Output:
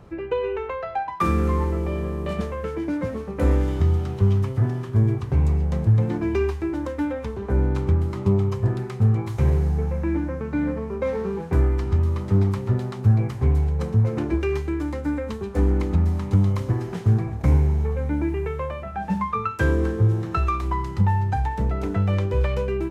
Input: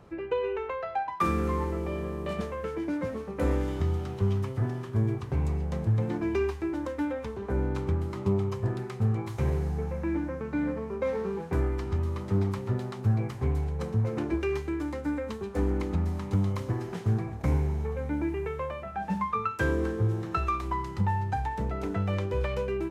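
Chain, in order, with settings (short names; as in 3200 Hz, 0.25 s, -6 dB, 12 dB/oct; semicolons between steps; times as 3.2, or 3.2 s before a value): low shelf 150 Hz +7 dB; gain +3.5 dB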